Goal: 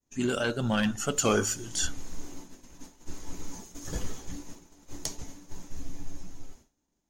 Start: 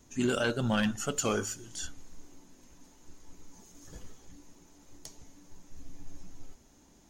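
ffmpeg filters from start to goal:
ffmpeg -i in.wav -af "agate=range=-33dB:threshold=-47dB:ratio=3:detection=peak,dynaudnorm=framelen=270:gausssize=13:maxgain=14dB" out.wav

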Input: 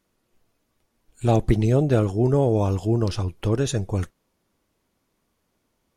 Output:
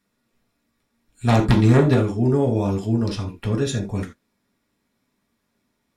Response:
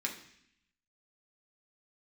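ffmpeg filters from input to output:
-filter_complex "[0:a]asplit=3[link_01][link_02][link_03];[link_01]afade=type=out:start_time=1.27:duration=0.02[link_04];[link_02]aeval=exprs='0.473*(cos(1*acos(clip(val(0)/0.473,-1,1)))-cos(1*PI/2))+0.237*(cos(5*acos(clip(val(0)/0.473,-1,1)))-cos(5*PI/2))+0.15*(cos(7*acos(clip(val(0)/0.473,-1,1)))-cos(7*PI/2))':channel_layout=same,afade=type=in:start_time=1.27:duration=0.02,afade=type=out:start_time=1.93:duration=0.02[link_05];[link_03]afade=type=in:start_time=1.93:duration=0.02[link_06];[link_04][link_05][link_06]amix=inputs=3:normalize=0[link_07];[1:a]atrim=start_sample=2205,afade=type=out:start_time=0.14:duration=0.01,atrim=end_sample=6615[link_08];[link_07][link_08]afir=irnorm=-1:irlink=0,volume=-1.5dB"

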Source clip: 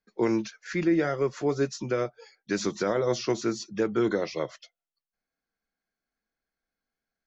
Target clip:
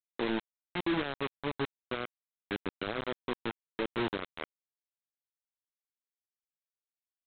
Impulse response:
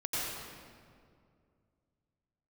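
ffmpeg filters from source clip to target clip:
-af "adynamicequalizer=threshold=0.00891:dfrequency=660:dqfactor=1.1:tfrequency=660:tqfactor=1.1:attack=5:release=100:ratio=0.375:range=3:mode=cutabove:tftype=bell,aresample=8000,acrusher=bits=3:mix=0:aa=0.000001,aresample=44100,volume=-8.5dB"

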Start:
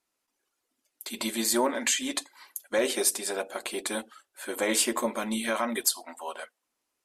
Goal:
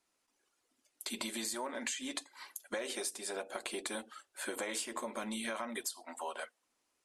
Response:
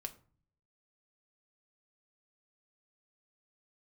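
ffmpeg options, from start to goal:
-filter_complex "[0:a]acrossover=split=560|2000[link_01][link_02][link_03];[link_01]alimiter=level_in=5dB:limit=-24dB:level=0:latency=1,volume=-5dB[link_04];[link_04][link_02][link_03]amix=inputs=3:normalize=0,acompressor=threshold=-38dB:ratio=6,lowpass=frequency=11000:width=0.5412,lowpass=frequency=11000:width=1.3066,volume=1.5dB"

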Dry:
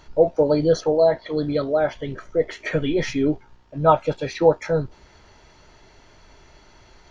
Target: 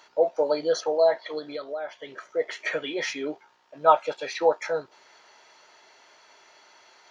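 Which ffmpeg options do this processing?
ffmpeg -i in.wav -filter_complex "[0:a]highpass=630,asettb=1/sr,asplit=3[link_01][link_02][link_03];[link_01]atrim=end=1.384[link_04];[link_02]atrim=start=1.38:end=2.23,asetpts=PTS-STARTPTS,afade=type=in:duration=0.004:curve=qsin,afade=type=out:start_time=0.846:duration=0.004:curve=qsin,acompressor=threshold=-33dB:ratio=3[link_05];[link_03]atrim=start=2.226[link_06];[link_04][link_05]acrossfade=duration=0.004:curve1=hsin:curve2=qsin[link_07];[link_07][link_06]acrossfade=duration=0.004:curve1=qsin:curve2=hsin" out.wav

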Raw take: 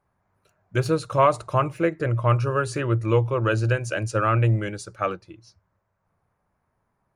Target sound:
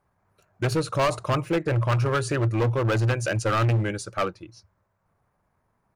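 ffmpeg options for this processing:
ffmpeg -i in.wav -af "asoftclip=type=hard:threshold=-21dB,atempo=1.2,volume=2dB" out.wav

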